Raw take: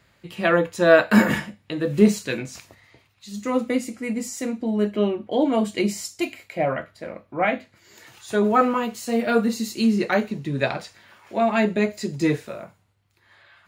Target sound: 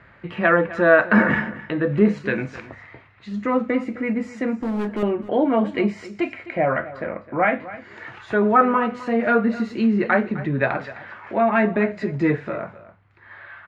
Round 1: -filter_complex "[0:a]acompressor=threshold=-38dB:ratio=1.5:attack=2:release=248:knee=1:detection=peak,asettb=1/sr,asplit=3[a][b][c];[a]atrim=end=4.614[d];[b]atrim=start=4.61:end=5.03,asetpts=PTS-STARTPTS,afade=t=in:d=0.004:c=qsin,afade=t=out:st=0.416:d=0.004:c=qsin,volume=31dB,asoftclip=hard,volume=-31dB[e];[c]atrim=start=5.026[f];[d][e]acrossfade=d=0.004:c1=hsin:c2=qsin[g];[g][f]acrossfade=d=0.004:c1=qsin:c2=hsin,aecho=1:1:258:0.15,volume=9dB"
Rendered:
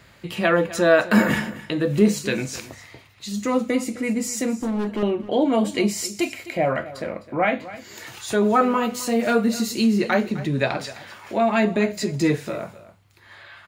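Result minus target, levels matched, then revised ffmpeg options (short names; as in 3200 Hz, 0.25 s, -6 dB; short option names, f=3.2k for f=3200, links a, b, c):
2000 Hz band -2.5 dB
-filter_complex "[0:a]acompressor=threshold=-38dB:ratio=1.5:attack=2:release=248:knee=1:detection=peak,lowpass=f=1.7k:t=q:w=1.7,asettb=1/sr,asplit=3[a][b][c];[a]atrim=end=4.614[d];[b]atrim=start=4.61:end=5.03,asetpts=PTS-STARTPTS,afade=t=in:d=0.004:c=qsin,afade=t=out:st=0.416:d=0.004:c=qsin,volume=31dB,asoftclip=hard,volume=-31dB[e];[c]atrim=start=5.026[f];[d][e]acrossfade=d=0.004:c1=hsin:c2=qsin[g];[g][f]acrossfade=d=0.004:c1=qsin:c2=hsin,aecho=1:1:258:0.15,volume=9dB"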